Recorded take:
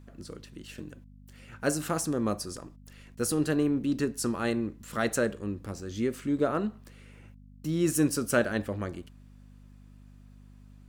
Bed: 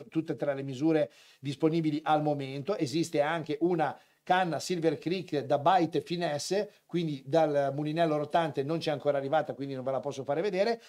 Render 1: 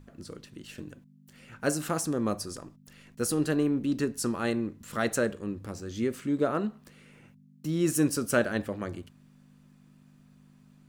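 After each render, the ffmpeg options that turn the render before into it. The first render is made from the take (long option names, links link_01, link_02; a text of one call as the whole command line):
ffmpeg -i in.wav -af "bandreject=frequency=50:width_type=h:width=4,bandreject=frequency=100:width_type=h:width=4" out.wav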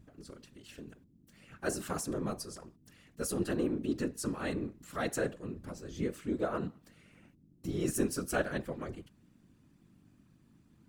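ffmpeg -i in.wav -af "afftfilt=real='hypot(re,im)*cos(2*PI*random(0))':imag='hypot(re,im)*sin(2*PI*random(1))':win_size=512:overlap=0.75" out.wav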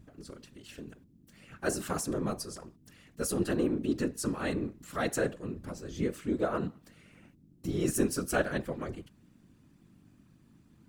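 ffmpeg -i in.wav -af "volume=3dB" out.wav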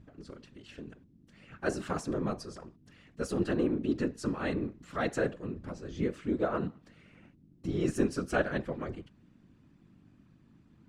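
ffmpeg -i in.wav -af "lowpass=6700,bass=frequency=250:gain=0,treble=frequency=4000:gain=-6" out.wav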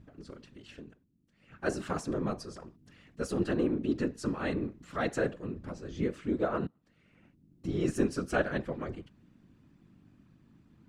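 ffmpeg -i in.wav -filter_complex "[0:a]asplit=4[link_01][link_02][link_03][link_04];[link_01]atrim=end=0.99,asetpts=PTS-STARTPTS,afade=type=out:start_time=0.71:duration=0.28:silence=0.251189[link_05];[link_02]atrim=start=0.99:end=1.38,asetpts=PTS-STARTPTS,volume=-12dB[link_06];[link_03]atrim=start=1.38:end=6.67,asetpts=PTS-STARTPTS,afade=type=in:duration=0.28:silence=0.251189,afade=type=out:start_time=5.286:duration=0.004:curve=hsin:silence=0.0841395[link_07];[link_04]atrim=start=6.67,asetpts=PTS-STARTPTS,afade=type=in:duration=1.05:silence=0.0841395[link_08];[link_05][link_06][link_07][link_08]concat=n=4:v=0:a=1" out.wav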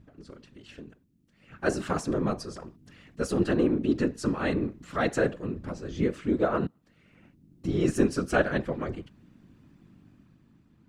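ffmpeg -i in.wav -af "dynaudnorm=framelen=120:gausssize=13:maxgain=5dB" out.wav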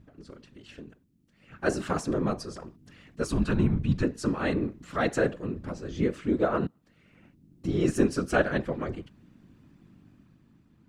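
ffmpeg -i in.wav -filter_complex "[0:a]asettb=1/sr,asplit=3[link_01][link_02][link_03];[link_01]atrim=end=3.244[link_04];[link_02]atrim=start=3.24:end=4.03,asetpts=PTS-STARTPTS,afade=type=in:duration=0.004:curve=qsin,afade=type=out:start_time=0.786:duration=0.004:curve=qsin,afreqshift=-140[link_05];[link_03]atrim=start=4.026[link_06];[link_04][link_05]acrossfade=duration=0.004:curve1=hsin:curve2=qsin[link_07];[link_07][link_06]acrossfade=duration=0.004:curve1=qsin:curve2=hsin" out.wav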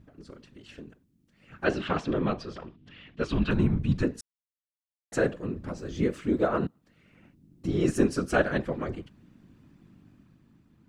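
ffmpeg -i in.wav -filter_complex "[0:a]asettb=1/sr,asplit=3[link_01][link_02][link_03];[link_01]atrim=end=1.644[link_04];[link_02]atrim=start=1.64:end=3.51,asetpts=PTS-STARTPTS,afade=type=in:duration=0.004:curve=qsin,afade=type=out:start_time=1.866:duration=0.004:curve=qsin,lowpass=frequency=3200:width_type=q:width=2.8[link_05];[link_03]atrim=start=3.506[link_06];[link_04][link_05]acrossfade=duration=0.004:curve1=hsin:curve2=qsin[link_07];[link_07][link_06]acrossfade=duration=0.004:curve1=qsin:curve2=hsin,asettb=1/sr,asplit=3[link_08][link_09][link_10];[link_08]atrim=end=5.784[link_11];[link_09]atrim=start=5.78:end=6.47,asetpts=PTS-STARTPTS,afade=type=in:duration=0.004:curve=qsin,afade=type=out:start_time=0.686:duration=0.004:curve=qsin,highshelf=frequency=9100:gain=7[link_12];[link_10]atrim=start=6.466[link_13];[link_11][link_12]acrossfade=duration=0.004:curve1=hsin:curve2=qsin[link_14];[link_14][link_13]acrossfade=duration=0.004:curve1=qsin:curve2=hsin,asplit=3[link_15][link_16][link_17];[link_15]atrim=end=4.21,asetpts=PTS-STARTPTS,afade=type=out:start_time=4.206:duration=0.004:curve=hsin[link_18];[link_16]atrim=start=4.21:end=5.12,asetpts=PTS-STARTPTS,volume=0[link_19];[link_17]atrim=start=5.12,asetpts=PTS-STARTPTS,afade=type=in:duration=0.004:curve=hsin[link_20];[link_18][link_19][link_20]concat=n=3:v=0:a=1" out.wav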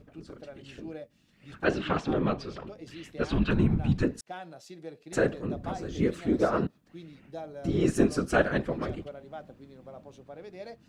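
ffmpeg -i in.wav -i bed.wav -filter_complex "[1:a]volume=-15dB[link_01];[0:a][link_01]amix=inputs=2:normalize=0" out.wav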